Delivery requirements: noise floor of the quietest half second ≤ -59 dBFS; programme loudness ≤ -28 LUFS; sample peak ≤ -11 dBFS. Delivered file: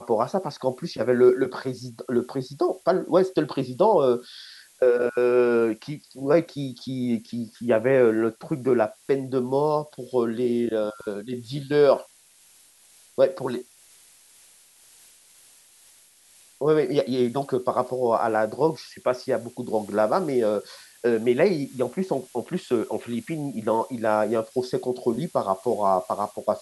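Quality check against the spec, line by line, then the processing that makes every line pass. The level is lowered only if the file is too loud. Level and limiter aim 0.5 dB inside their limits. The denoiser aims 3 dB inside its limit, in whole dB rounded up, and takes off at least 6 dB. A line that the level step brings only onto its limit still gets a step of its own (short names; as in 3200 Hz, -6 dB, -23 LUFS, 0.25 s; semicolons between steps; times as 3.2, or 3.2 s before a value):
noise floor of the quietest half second -56 dBFS: fail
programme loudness -24.5 LUFS: fail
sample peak -7.0 dBFS: fail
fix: gain -4 dB; limiter -11.5 dBFS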